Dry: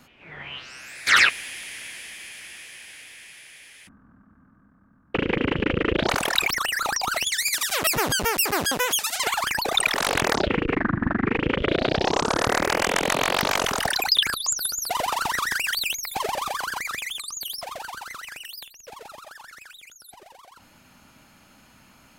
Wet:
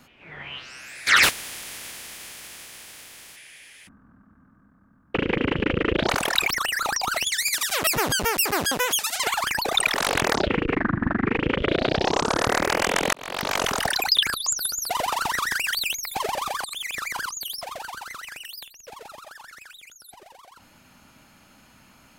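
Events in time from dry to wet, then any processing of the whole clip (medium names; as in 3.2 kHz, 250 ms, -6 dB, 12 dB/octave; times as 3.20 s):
1.22–3.35 s: spectral contrast reduction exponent 0.32
13.13–13.64 s: fade in
16.64–17.29 s: reverse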